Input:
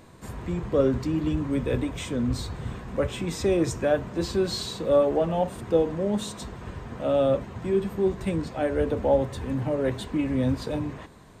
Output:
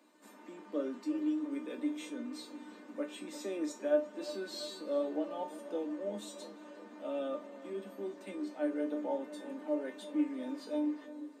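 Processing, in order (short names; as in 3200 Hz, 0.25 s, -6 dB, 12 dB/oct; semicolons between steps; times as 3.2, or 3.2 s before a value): steep high-pass 200 Hz 96 dB/oct; resonator 300 Hz, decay 0.25 s, harmonics all, mix 90%; on a send: darkening echo 0.349 s, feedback 73%, low-pass 1900 Hz, level -14 dB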